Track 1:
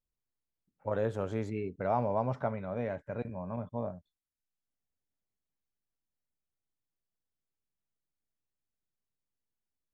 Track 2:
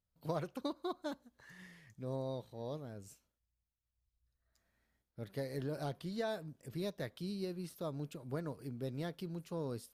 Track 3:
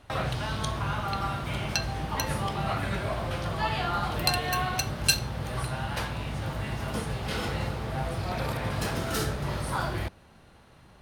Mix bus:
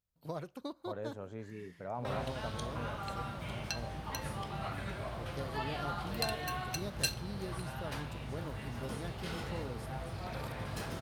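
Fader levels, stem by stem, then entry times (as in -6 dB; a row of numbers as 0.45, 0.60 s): -10.5, -3.0, -10.0 dB; 0.00, 0.00, 1.95 s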